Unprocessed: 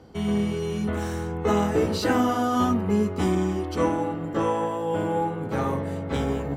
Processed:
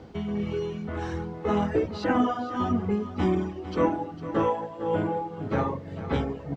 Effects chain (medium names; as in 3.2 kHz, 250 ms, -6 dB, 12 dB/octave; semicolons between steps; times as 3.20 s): reverb removal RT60 1.2 s; in parallel at -3 dB: compression, threshold -31 dBFS, peak gain reduction 12.5 dB; on the sum: tremolo 1.8 Hz, depth 59%; added noise white -58 dBFS; distance through air 180 m; on a send: delay 455 ms -13.5 dB